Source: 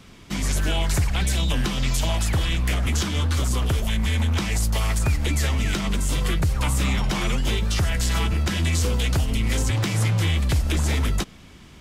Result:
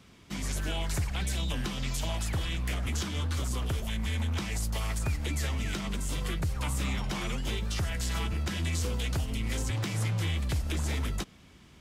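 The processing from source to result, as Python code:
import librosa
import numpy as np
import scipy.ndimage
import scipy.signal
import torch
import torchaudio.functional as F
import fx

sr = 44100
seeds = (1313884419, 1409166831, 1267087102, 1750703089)

y = scipy.signal.sosfilt(scipy.signal.butter(2, 40.0, 'highpass', fs=sr, output='sos'), x)
y = y * librosa.db_to_amplitude(-8.5)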